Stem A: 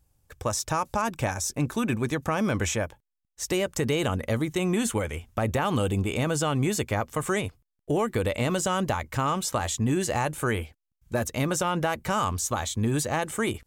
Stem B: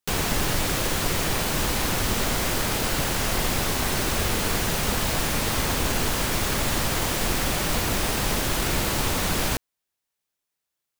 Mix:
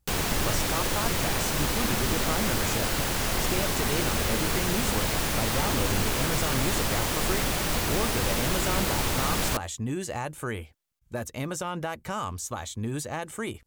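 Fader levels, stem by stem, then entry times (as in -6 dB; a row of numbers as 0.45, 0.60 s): -6.0, -2.5 dB; 0.00, 0.00 s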